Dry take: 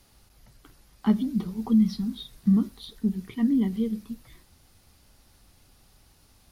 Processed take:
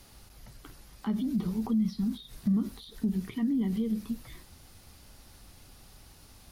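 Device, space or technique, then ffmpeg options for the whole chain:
de-esser from a sidechain: -filter_complex "[0:a]asplit=2[link_01][link_02];[link_02]highpass=frequency=4400:poles=1,apad=whole_len=287372[link_03];[link_01][link_03]sidechaincompress=threshold=-55dB:ratio=6:attack=4.7:release=64,volume=5dB"

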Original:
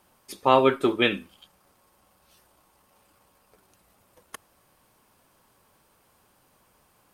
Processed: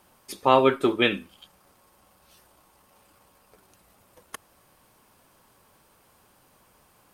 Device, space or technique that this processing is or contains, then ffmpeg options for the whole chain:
parallel compression: -filter_complex "[0:a]asplit=2[link_01][link_02];[link_02]acompressor=threshold=-40dB:ratio=6,volume=-7.5dB[link_03];[link_01][link_03]amix=inputs=2:normalize=0"

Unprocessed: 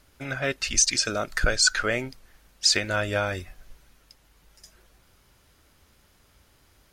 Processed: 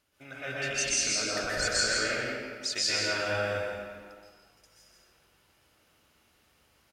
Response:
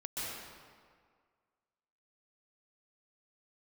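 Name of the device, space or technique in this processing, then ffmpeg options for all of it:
PA in a hall: -filter_complex "[0:a]highpass=frequency=180:poles=1,equalizer=frequency=2800:width_type=o:width=0.25:gain=5,aecho=1:1:166:0.562[link_01];[1:a]atrim=start_sample=2205[link_02];[link_01][link_02]afir=irnorm=-1:irlink=0,volume=-7.5dB"

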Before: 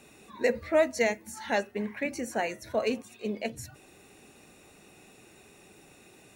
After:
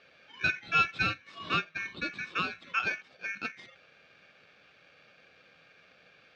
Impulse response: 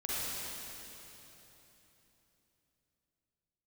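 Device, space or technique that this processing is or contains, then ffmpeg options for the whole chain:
ring modulator pedal into a guitar cabinet: -filter_complex "[0:a]aeval=exprs='val(0)*sgn(sin(2*PI*2000*n/s))':channel_layout=same,highpass=99,equalizer=frequency=180:width_type=q:width=4:gain=6,equalizer=frequency=910:width_type=q:width=4:gain=-8,equalizer=frequency=1900:width_type=q:width=4:gain=-9,lowpass=frequency=3600:width=0.5412,lowpass=frequency=3600:width=1.3066,asettb=1/sr,asplit=3[link_01][link_02][link_03];[link_01]atrim=end=1.274[link_04];[link_02]atrim=start=1.27:end=2.93,asetpts=PTS-STARTPTS,afade=type=in:duration=0.004:curve=qsin,afade=type=out:start_time=1.656:duration=0.004:curve=qsin,equalizer=frequency=1100:width_type=o:width=0.27:gain=7[link_05];[link_03]atrim=start=2.926[link_06];[link_04][link_05]acrossfade=duration=0.004:curve1=hsin:curve2=qsin[link_07];[link_07][link_06]acrossfade=duration=0.004:curve1=qsin:curve2=hsin"

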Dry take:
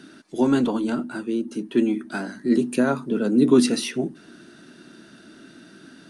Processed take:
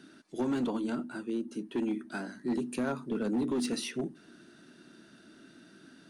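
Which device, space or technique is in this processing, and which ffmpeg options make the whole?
limiter into clipper: -af "alimiter=limit=-12.5dB:level=0:latency=1:release=110,asoftclip=type=hard:threshold=-17dB,volume=-8.5dB"

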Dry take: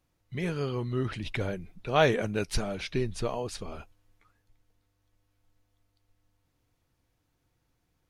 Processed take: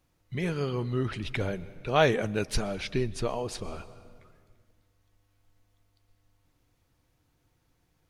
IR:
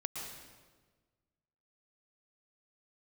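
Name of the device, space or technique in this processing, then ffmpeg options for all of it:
ducked reverb: -filter_complex "[0:a]asplit=3[link_01][link_02][link_03];[1:a]atrim=start_sample=2205[link_04];[link_02][link_04]afir=irnorm=-1:irlink=0[link_05];[link_03]apad=whole_len=357009[link_06];[link_05][link_06]sidechaincompress=threshold=-37dB:ratio=12:attack=16:release=1070,volume=-4dB[link_07];[link_01][link_07]amix=inputs=2:normalize=0"

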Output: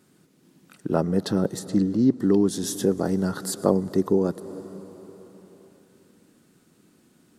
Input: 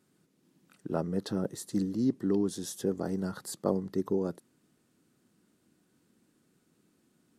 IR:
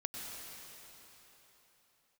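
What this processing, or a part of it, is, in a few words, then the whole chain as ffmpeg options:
ducked reverb: -filter_complex "[0:a]asplit=3[link_01][link_02][link_03];[1:a]atrim=start_sample=2205[link_04];[link_02][link_04]afir=irnorm=-1:irlink=0[link_05];[link_03]apad=whole_len=325815[link_06];[link_05][link_06]sidechaincompress=threshold=-36dB:ratio=8:attack=28:release=333,volume=-9dB[link_07];[link_01][link_07]amix=inputs=2:normalize=0,asettb=1/sr,asplit=3[link_08][link_09][link_10];[link_08]atrim=end=1.594[link_11];[link_09]atrim=start=1.59:end=2.2,asetpts=PTS-STARTPTS,afade=type=in:duration=0.004:curve=qsin,afade=type=out:start_time=0.606:duration=0.004:curve=qsin,aemphasis=mode=reproduction:type=50kf[link_12];[link_10]atrim=start=2.196[link_13];[link_11][link_12]acrossfade=duration=0.004:curve1=hsin:curve2=qsin[link_14];[link_14][link_13]acrossfade=duration=0.004:curve1=qsin:curve2=hsin,volume=8dB"

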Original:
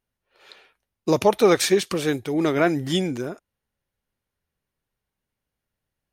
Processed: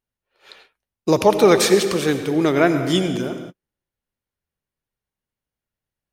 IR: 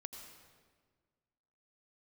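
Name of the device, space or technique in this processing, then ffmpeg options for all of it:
keyed gated reverb: -filter_complex "[0:a]asplit=3[link_01][link_02][link_03];[1:a]atrim=start_sample=2205[link_04];[link_02][link_04]afir=irnorm=-1:irlink=0[link_05];[link_03]apad=whole_len=270039[link_06];[link_05][link_06]sidechaingate=range=-52dB:threshold=-52dB:ratio=16:detection=peak,volume=9dB[link_07];[link_01][link_07]amix=inputs=2:normalize=0,volume=-5dB"

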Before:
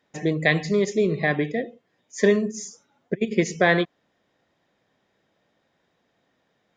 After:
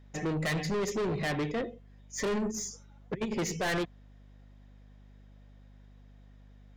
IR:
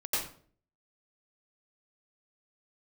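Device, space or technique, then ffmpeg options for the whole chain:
valve amplifier with mains hum: -af "aeval=exprs='(tanh(25.1*val(0)+0.1)-tanh(0.1))/25.1':channel_layout=same,aeval=exprs='val(0)+0.00224*(sin(2*PI*50*n/s)+sin(2*PI*2*50*n/s)/2+sin(2*PI*3*50*n/s)/3+sin(2*PI*4*50*n/s)/4+sin(2*PI*5*50*n/s)/5)':channel_layout=same"

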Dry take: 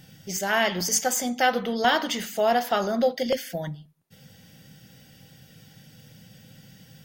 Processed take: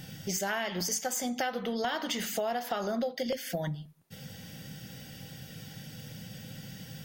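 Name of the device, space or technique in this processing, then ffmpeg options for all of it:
serial compression, peaks first: -af "acompressor=threshold=-30dB:ratio=5,acompressor=threshold=-43dB:ratio=1.5,volume=5.5dB"

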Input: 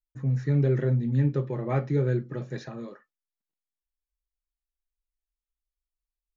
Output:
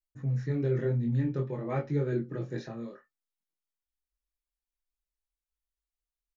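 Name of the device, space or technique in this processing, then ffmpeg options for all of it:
double-tracked vocal: -filter_complex "[0:a]asplit=2[link_01][link_02];[link_02]adelay=18,volume=-14dB[link_03];[link_01][link_03]amix=inputs=2:normalize=0,flanger=delay=20:depth=5.7:speed=0.53,asettb=1/sr,asplit=3[link_04][link_05][link_06];[link_04]atrim=end=2.124[link_07];[link_05]atrim=start=2.12:end=2.73,asetpts=PTS-STARTPTS,afade=type=in:duration=0.004:curve=qsin,afade=type=out:start_time=0.606:duration=0.004:curve=qsin,equalizer=frequency=320:width=1.6:gain=7[link_08];[link_06]atrim=start=2.726[link_09];[link_07][link_08]acrossfade=duration=0.004:curve1=hsin:curve2=qsin[link_10];[link_10][link_09]acrossfade=duration=0.004:curve1=qsin:curve2=hsin,volume=-1dB"

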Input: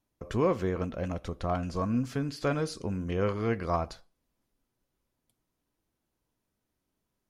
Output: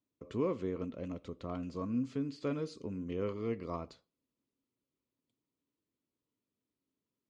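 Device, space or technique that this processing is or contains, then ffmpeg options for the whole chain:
car door speaker: -filter_complex "[0:a]highpass=100,equalizer=frequency=270:width_type=q:width=4:gain=7,equalizer=frequency=430:width_type=q:width=4:gain=4,equalizer=frequency=760:width_type=q:width=4:gain=-10,equalizer=frequency=1600:width_type=q:width=4:gain=-9,equalizer=frequency=5600:width_type=q:width=4:gain=-7,lowpass=frequency=7200:width=0.5412,lowpass=frequency=7200:width=1.3066,asettb=1/sr,asplit=3[link_01][link_02][link_03];[link_01]atrim=end=3.334[link_04];[link_02]atrim=start=3.33:end=3.79,asetpts=PTS-STARTPTS,afade=type=in:duration=0.004:curve=qsin,afade=type=out:start_time=0.456:duration=0.004:curve=qsin,bandreject=frequency=1500:width=6.3[link_05];[link_03]atrim=start=3.786[link_06];[link_04][link_05]acrossfade=duration=0.004:curve1=hsin:curve2=qsin[link_07];[link_07][link_06]acrossfade=duration=0.004:curve1=qsin:curve2=hsin,volume=-8.5dB"

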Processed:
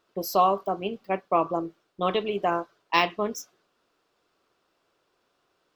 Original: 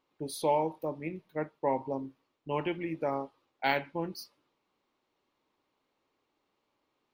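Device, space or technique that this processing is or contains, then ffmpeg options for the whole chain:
nightcore: -af "asetrate=54684,aresample=44100,volume=7dB"

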